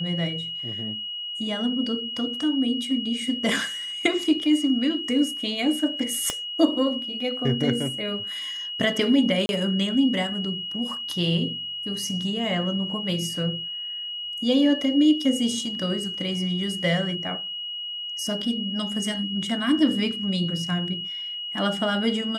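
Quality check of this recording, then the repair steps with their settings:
tone 2900 Hz -30 dBFS
6.3 pop -10 dBFS
9.46–9.49 gap 31 ms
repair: de-click; notch 2900 Hz, Q 30; interpolate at 9.46, 31 ms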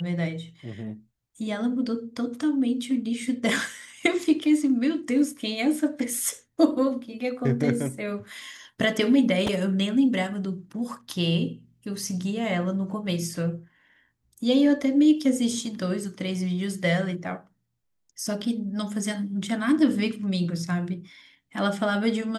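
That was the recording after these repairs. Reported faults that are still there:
6.3 pop

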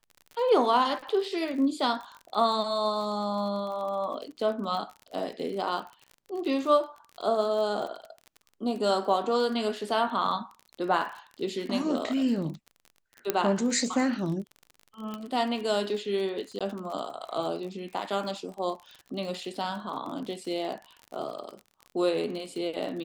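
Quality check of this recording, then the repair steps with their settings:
crackle 41/s -36 dBFS
13.3 pop -10 dBFS
15.14 pop -22 dBFS
16.59–16.61 gap 16 ms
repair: de-click; interpolate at 16.59, 16 ms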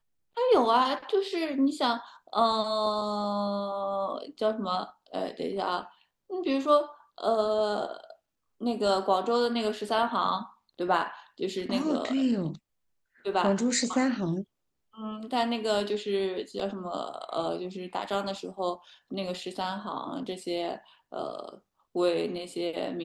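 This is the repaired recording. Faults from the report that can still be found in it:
none

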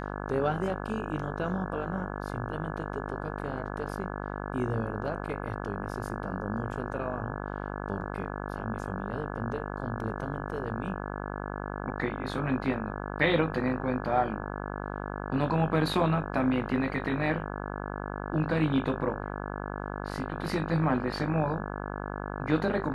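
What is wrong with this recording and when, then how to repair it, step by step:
buzz 50 Hz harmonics 34 -36 dBFS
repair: de-hum 50 Hz, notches 34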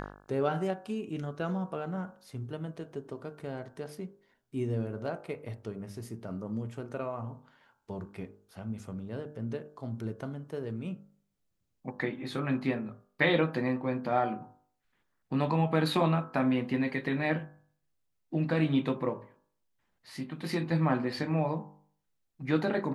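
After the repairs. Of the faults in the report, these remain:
none

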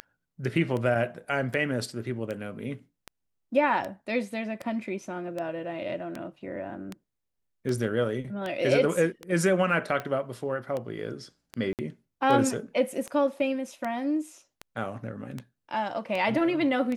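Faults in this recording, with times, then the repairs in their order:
tick 78 rpm -20 dBFS
11.73–11.79 gap 58 ms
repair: de-click; interpolate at 11.73, 58 ms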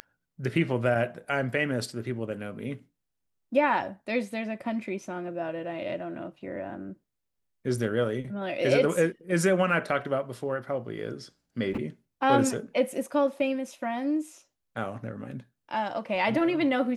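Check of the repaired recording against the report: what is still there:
none

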